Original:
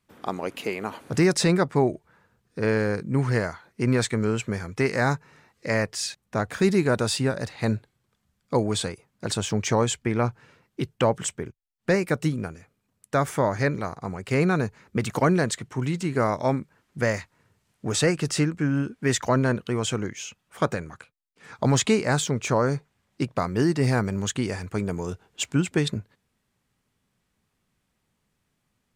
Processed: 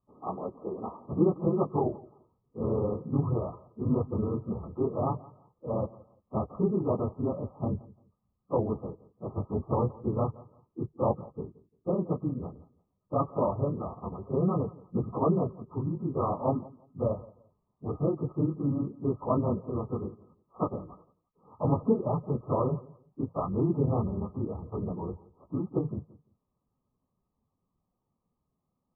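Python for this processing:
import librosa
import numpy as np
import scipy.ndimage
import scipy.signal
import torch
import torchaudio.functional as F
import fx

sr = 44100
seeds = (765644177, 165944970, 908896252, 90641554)

y = fx.phase_scramble(x, sr, seeds[0], window_ms=50)
y = fx.brickwall_lowpass(y, sr, high_hz=1300.0)
y = fx.echo_feedback(y, sr, ms=172, feedback_pct=23, wet_db=-21)
y = y * librosa.db_to_amplitude(-5.0)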